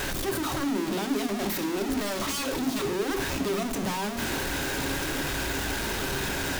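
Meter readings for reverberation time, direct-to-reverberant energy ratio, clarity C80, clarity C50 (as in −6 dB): non-exponential decay, 7.0 dB, 15.5 dB, 12.5 dB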